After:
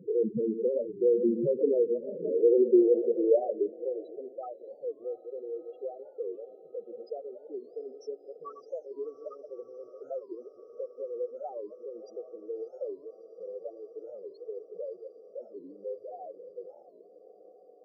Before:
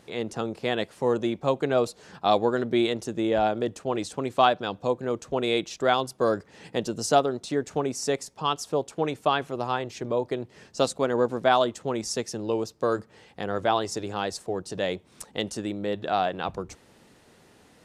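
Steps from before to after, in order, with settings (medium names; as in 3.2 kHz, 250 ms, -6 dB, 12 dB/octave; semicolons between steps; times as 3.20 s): chunks repeated in reverse 104 ms, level -10 dB; low-pass 3.6 kHz 12 dB/octave; compression 3:1, threshold -36 dBFS, peak gain reduction 16 dB; resonant low shelf 610 Hz +7 dB, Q 3; loudest bins only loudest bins 4; echo that smears into a reverb 658 ms, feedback 76%, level -15.5 dB; high-pass sweep 180 Hz -> 950 Hz, 1.32–4.43 s; warped record 45 rpm, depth 250 cents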